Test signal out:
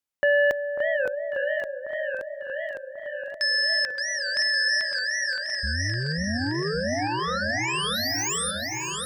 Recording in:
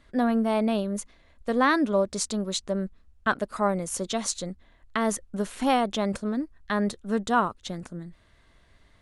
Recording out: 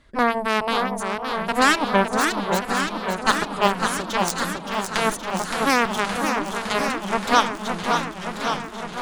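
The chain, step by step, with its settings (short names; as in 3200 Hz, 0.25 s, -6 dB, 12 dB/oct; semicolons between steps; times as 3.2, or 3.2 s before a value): added harmonics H 7 -12 dB, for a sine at -9 dBFS; echo with dull and thin repeats by turns 0.545 s, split 1500 Hz, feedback 70%, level -7.5 dB; warbling echo 0.566 s, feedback 75%, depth 210 cents, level -6.5 dB; gain +5 dB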